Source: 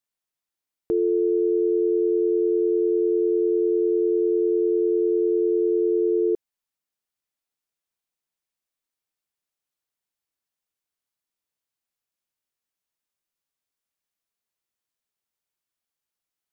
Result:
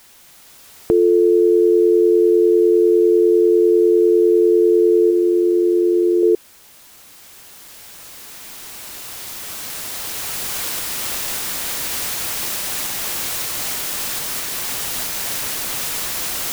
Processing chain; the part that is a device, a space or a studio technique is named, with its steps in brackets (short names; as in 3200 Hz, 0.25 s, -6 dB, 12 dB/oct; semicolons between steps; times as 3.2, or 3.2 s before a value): 5.1–6.23 notch 430 Hz, Q 12; cheap recorder with automatic gain (white noise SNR 30 dB; recorder AGC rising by 5.6 dB/s); gain +8 dB